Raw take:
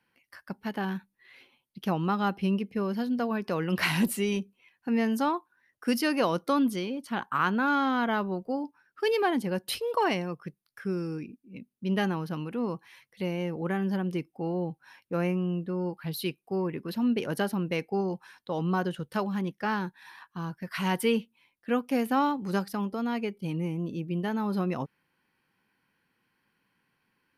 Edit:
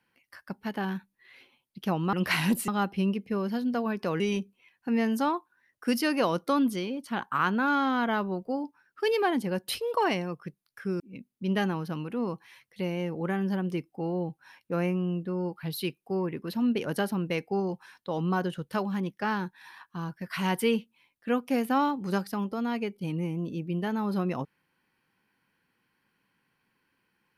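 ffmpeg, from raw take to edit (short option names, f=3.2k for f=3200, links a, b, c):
-filter_complex "[0:a]asplit=5[a][b][c][d][e];[a]atrim=end=2.132[f];[b]atrim=start=3.648:end=4.202[g];[c]atrim=start=2.128:end=3.652[h];[d]atrim=start=4.198:end=11.002[i];[e]atrim=start=11.408[j];[f][g]acrossfade=d=0.004:c1=hsin:c2=hsin[k];[k][h]acrossfade=d=0.004:c1=hsin:c2=hsin[l];[l][i]acrossfade=d=0.004:c1=hsin:c2=hsin[m];[m][j]acrossfade=d=0.004:c1=hsin:c2=hsin"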